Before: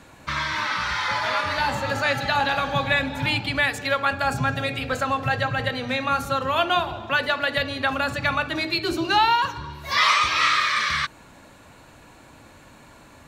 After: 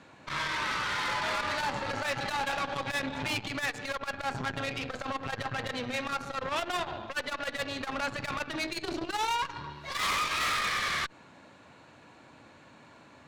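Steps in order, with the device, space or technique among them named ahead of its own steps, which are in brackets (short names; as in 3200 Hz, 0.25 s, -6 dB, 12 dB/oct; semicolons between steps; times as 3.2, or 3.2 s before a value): valve radio (BPF 120–5300 Hz; tube stage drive 26 dB, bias 0.8; core saturation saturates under 260 Hz)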